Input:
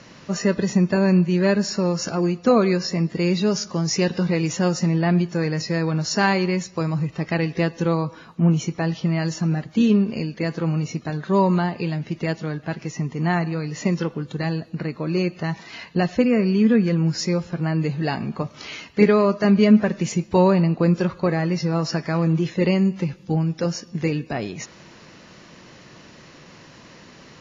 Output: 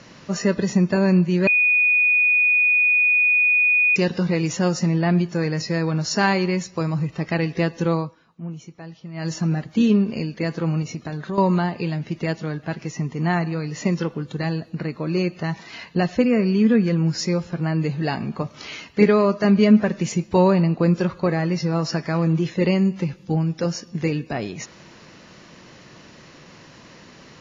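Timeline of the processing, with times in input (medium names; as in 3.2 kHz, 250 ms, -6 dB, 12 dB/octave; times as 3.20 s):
1.47–3.96 s: bleep 2.47 kHz -14 dBFS
7.97–9.31 s: dip -15 dB, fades 0.18 s
10.82–11.38 s: compression 5:1, threshold -24 dBFS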